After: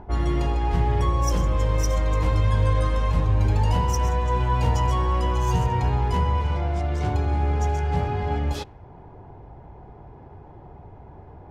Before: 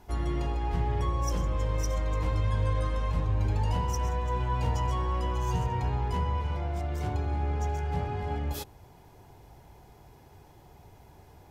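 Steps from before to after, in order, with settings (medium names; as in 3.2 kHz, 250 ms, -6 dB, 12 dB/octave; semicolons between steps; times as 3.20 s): upward compressor, threshold -44 dBFS; level-controlled noise filter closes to 970 Hz, open at -24.5 dBFS; trim +7 dB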